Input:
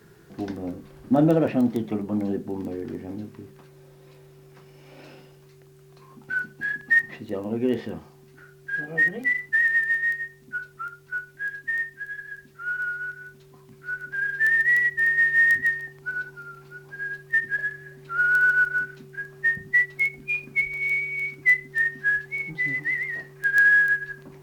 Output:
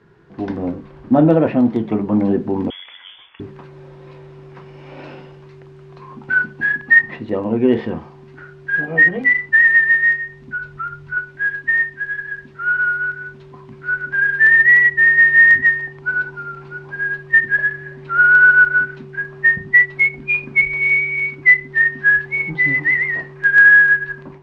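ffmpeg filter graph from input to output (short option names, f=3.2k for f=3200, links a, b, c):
-filter_complex "[0:a]asettb=1/sr,asplit=3[a][b][c];[a]atrim=end=2.704[d];[b]atrim=start=2.7:end=3.4,asetpts=PTS-STARTPTS,afade=t=in:d=0.004:c=qsin,afade=t=out:st=0.696:d=0.004:c=qsin,highpass=f=550:w=0.5412,highpass=f=550:w=1.3066,lowpass=f=3.2k:t=q:w=0.5098,lowpass=f=3.2k:t=q:w=0.6013,lowpass=f=3.2k:t=q:w=0.9,lowpass=f=3.2k:t=q:w=2.563,afreqshift=-3800[e];[c]atrim=start=3.396[f];[d][e]acrossfade=d=0.004:c1=hsin:c2=qsin[g];[g][f]acrossfade=d=0.004:c1=qsin:c2=hsin,asettb=1/sr,asplit=3[h][i][j];[h]atrim=end=10.164[k];[i]atrim=start=10.16:end=11.17,asetpts=PTS-STARTPTS,afade=t=in:d=0.004:c=qsin,afade=t=out:st=1.006:d=0.004:c=qsin,asubboost=boost=8:cutoff=200,acompressor=threshold=-35dB:ratio=2:attack=3.2:release=140:knee=1:detection=peak[l];[j]atrim=start=11.166[m];[k][l]acrossfade=d=0.004:c1=hsin:c2=qsin[n];[n][m]acrossfade=d=0.004:c1=qsin:c2=hsin,lowpass=2.9k,equalizer=f=980:t=o:w=0.29:g=5.5,dynaudnorm=f=300:g=3:m=11dB"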